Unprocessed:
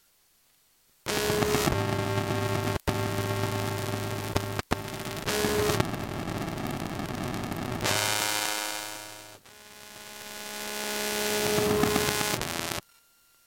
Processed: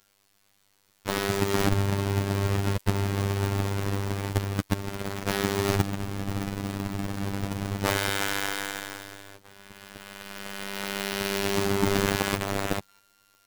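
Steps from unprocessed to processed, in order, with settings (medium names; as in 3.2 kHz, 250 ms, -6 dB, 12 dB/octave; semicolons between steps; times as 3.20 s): square wave that keeps the level; robot voice 99.2 Hz; trim -3.5 dB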